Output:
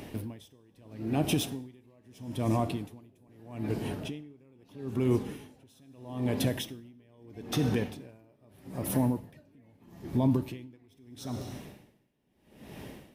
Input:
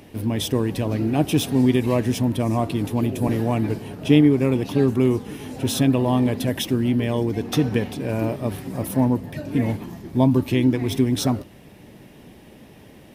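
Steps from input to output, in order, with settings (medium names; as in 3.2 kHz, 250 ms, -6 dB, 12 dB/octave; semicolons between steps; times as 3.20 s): in parallel at +2.5 dB: compression, threshold -32 dBFS, peak gain reduction 20 dB; on the sum: peak limiter -11.5 dBFS, peak gain reduction 9 dB; plate-style reverb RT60 1.3 s, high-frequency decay 0.9×, DRR 11 dB; logarithmic tremolo 0.78 Hz, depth 34 dB; trim -5 dB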